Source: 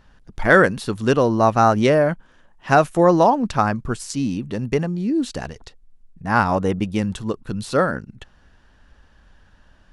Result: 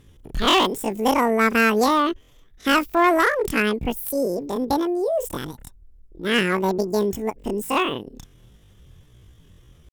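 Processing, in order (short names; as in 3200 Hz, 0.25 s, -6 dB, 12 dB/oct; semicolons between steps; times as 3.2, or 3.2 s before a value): tone controls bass +7 dB, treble +8 dB; pitch shift +12 st; one-sided clip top -12.5 dBFS; gain -4 dB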